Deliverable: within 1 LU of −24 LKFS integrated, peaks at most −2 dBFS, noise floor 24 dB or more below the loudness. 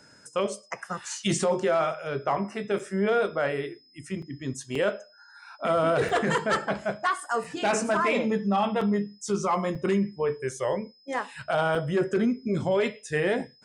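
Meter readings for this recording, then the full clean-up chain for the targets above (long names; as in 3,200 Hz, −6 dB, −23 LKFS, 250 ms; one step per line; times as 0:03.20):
number of dropouts 8; longest dropout 4.2 ms; interfering tone 5,100 Hz; level of the tone −57 dBFS; integrated loudness −27.5 LKFS; sample peak −15.5 dBFS; target loudness −24.0 LKFS
→ repair the gap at 0:02.79/0:04.22/0:04.75/0:06.09/0:07.44/0:08.81/0:09.75/0:11.75, 4.2 ms
notch filter 5,100 Hz, Q 30
level +3.5 dB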